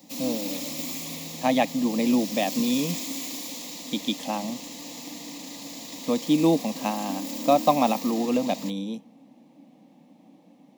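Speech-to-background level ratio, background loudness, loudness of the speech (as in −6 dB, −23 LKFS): 8.0 dB, −34.0 LKFS, −26.0 LKFS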